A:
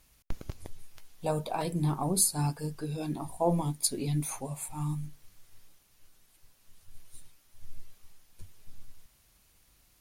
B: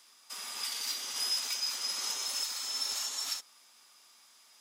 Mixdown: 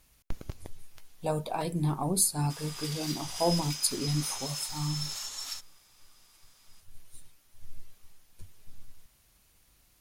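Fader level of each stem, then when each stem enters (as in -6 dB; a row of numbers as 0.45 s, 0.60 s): 0.0 dB, -3.0 dB; 0.00 s, 2.20 s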